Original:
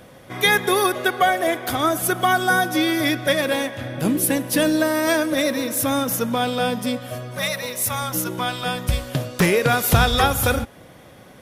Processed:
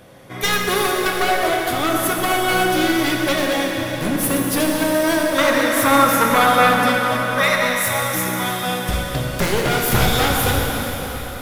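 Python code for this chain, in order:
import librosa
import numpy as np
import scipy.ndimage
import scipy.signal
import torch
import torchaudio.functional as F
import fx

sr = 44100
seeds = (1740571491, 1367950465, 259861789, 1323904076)

y = np.minimum(x, 2.0 * 10.0 ** (-17.0 / 20.0) - x)
y = fx.peak_eq(y, sr, hz=1300.0, db=15.0, octaves=1.6, at=(5.38, 7.79))
y = fx.rev_plate(y, sr, seeds[0], rt60_s=4.8, hf_ratio=0.85, predelay_ms=0, drr_db=-1.0)
y = F.gain(torch.from_numpy(y), -1.0).numpy()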